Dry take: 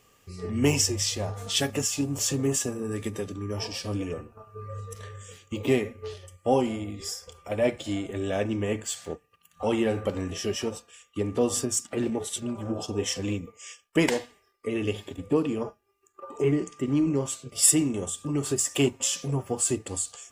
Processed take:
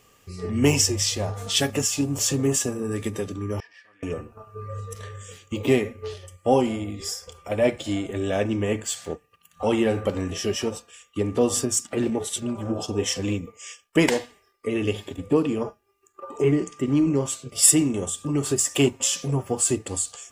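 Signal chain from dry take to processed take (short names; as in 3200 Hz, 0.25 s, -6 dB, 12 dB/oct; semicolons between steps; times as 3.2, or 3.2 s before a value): 3.6–4.03 band-pass 1800 Hz, Q 11; gain +3.5 dB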